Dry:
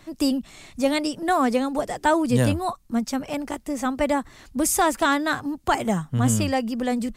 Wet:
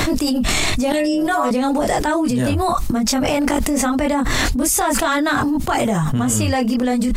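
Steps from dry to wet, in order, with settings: chorus voices 6, 0.87 Hz, delay 22 ms, depth 2.5 ms; 0.92–1.51 s: inharmonic resonator 73 Hz, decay 0.6 s, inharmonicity 0.008; level flattener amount 100%

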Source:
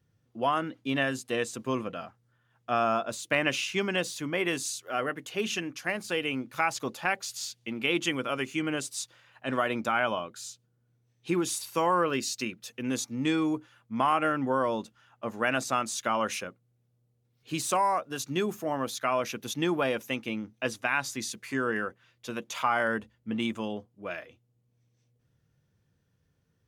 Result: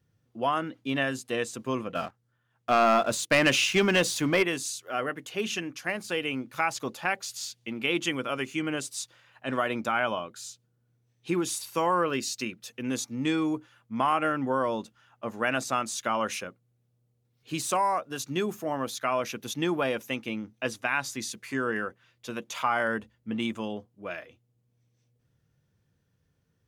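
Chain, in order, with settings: 1.95–4.43 s: waveshaping leveller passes 2

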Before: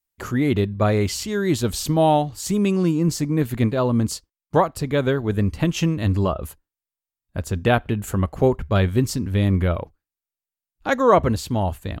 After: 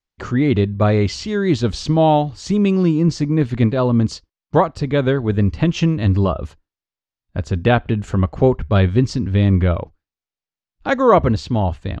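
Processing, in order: low-pass 5.7 kHz 24 dB/octave; bass shelf 350 Hz +3 dB; trim +2 dB

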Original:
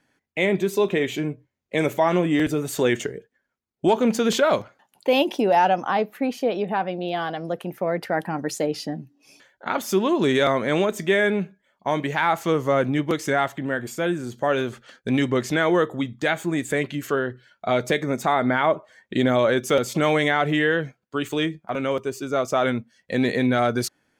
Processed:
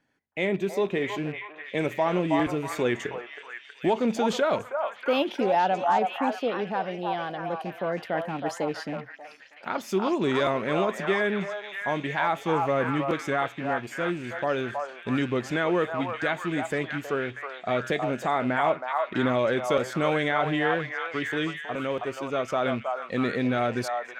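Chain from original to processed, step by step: rattle on loud lows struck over -31 dBFS, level -29 dBFS; treble shelf 7.3 kHz -10.5 dB; on a send: repeats whose band climbs or falls 320 ms, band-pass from 890 Hz, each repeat 0.7 oct, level -0.5 dB; on the sum: trim -5 dB

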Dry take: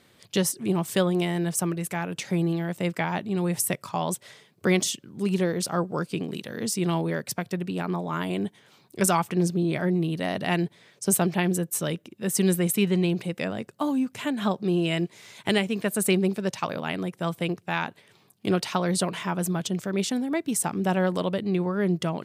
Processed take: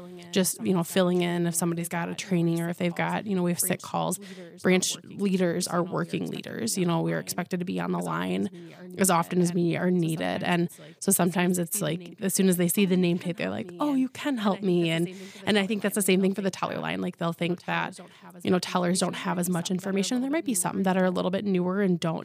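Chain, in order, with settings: reverse echo 1028 ms -19 dB

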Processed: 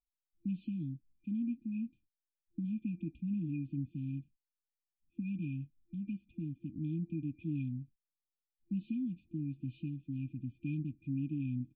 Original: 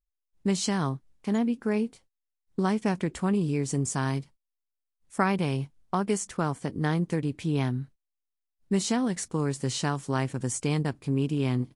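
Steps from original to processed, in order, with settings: FFT band-reject 340–2400 Hz; cascade formant filter a; trim +18 dB

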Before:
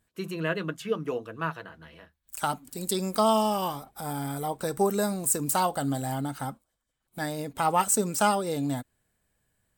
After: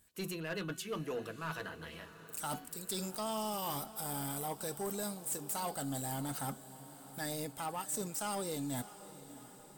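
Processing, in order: treble shelf 3.8 kHz +11.5 dB; de-hum 371.2 Hz, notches 17; reverse; compression 8:1, threshold -33 dBFS, peak gain reduction 21.5 dB; reverse; saturation -31.5 dBFS, distortion -14 dB; echo that smears into a reverb 657 ms, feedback 61%, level -15.5 dB

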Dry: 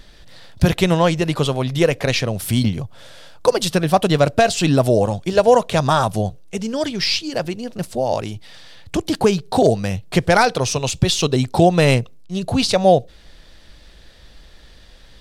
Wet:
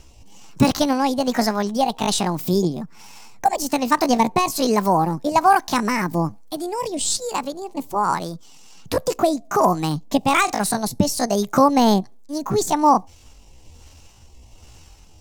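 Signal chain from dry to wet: rotary cabinet horn 1.2 Hz; pitch shift +8 st

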